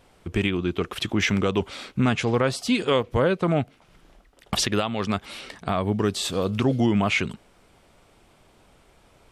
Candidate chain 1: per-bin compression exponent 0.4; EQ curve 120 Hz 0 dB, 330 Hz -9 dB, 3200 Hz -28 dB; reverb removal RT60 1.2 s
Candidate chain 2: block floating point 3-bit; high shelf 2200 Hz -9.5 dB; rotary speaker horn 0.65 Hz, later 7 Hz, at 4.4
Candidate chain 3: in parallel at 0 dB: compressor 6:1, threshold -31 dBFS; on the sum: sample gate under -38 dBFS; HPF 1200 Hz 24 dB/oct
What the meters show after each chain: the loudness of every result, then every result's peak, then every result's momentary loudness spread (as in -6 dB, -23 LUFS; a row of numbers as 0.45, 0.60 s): -28.5, -27.0, -28.0 LUFS; -12.0, -12.0, -8.5 dBFS; 15, 10, 11 LU